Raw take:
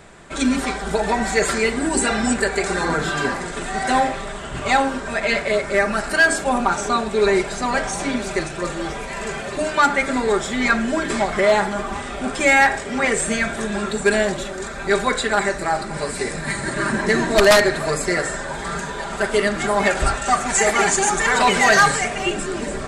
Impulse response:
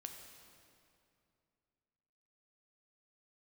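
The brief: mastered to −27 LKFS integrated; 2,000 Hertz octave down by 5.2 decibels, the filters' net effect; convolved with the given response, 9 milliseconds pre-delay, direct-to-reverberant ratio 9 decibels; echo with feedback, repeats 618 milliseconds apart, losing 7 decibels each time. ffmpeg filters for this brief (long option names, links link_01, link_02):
-filter_complex "[0:a]equalizer=frequency=2000:width_type=o:gain=-6.5,aecho=1:1:618|1236|1854|2472|3090:0.447|0.201|0.0905|0.0407|0.0183,asplit=2[link_01][link_02];[1:a]atrim=start_sample=2205,adelay=9[link_03];[link_02][link_03]afir=irnorm=-1:irlink=0,volume=-4.5dB[link_04];[link_01][link_04]amix=inputs=2:normalize=0,volume=-7dB"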